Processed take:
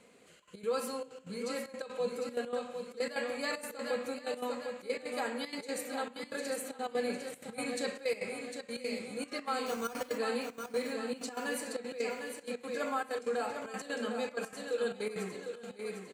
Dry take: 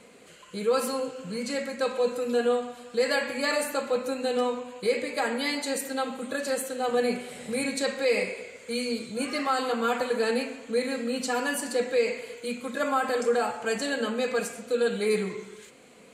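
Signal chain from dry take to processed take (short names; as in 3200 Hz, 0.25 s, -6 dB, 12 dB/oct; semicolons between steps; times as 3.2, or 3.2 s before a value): 9.66–10.18 careless resampling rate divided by 6×, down none, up hold; feedback echo 0.753 s, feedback 47%, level -7 dB; step gate "xxxxx.x." 190 bpm -12 dB; gain -8.5 dB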